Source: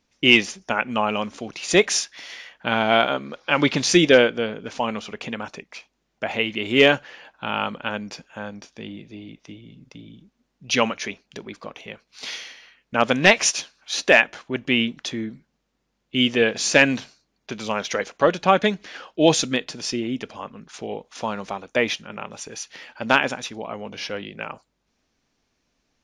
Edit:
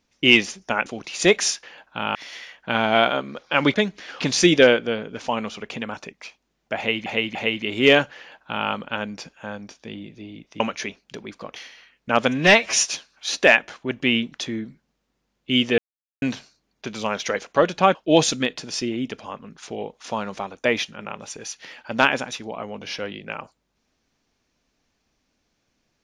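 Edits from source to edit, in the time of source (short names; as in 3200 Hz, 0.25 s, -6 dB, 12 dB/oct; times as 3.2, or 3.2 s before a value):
0.86–1.35 cut
6.28–6.57 loop, 3 plays
7.1–7.62 copy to 2.12
9.53–10.82 cut
11.78–12.41 cut
13.13–13.53 stretch 1.5×
16.43–16.87 mute
18.6–19.06 move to 3.71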